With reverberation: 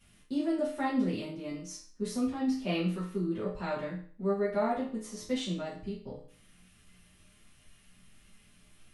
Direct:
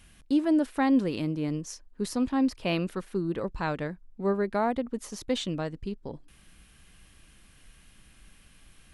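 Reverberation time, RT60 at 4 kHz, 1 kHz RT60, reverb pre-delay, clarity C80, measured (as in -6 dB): 0.45 s, 0.45 s, 0.45 s, 5 ms, 10.0 dB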